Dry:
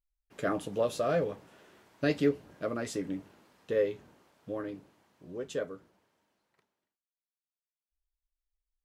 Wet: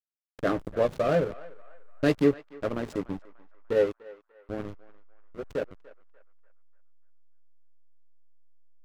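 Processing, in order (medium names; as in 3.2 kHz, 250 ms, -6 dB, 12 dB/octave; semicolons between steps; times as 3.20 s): hysteresis with a dead band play -29.5 dBFS; band-passed feedback delay 294 ms, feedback 45%, band-pass 1.3 kHz, level -17 dB; trim +5.5 dB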